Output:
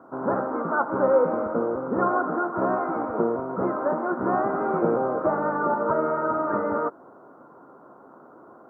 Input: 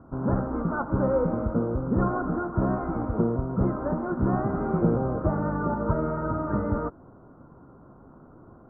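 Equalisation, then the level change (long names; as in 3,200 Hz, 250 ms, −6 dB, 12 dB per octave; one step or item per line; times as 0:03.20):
high-pass filter 420 Hz 12 dB per octave
+7.0 dB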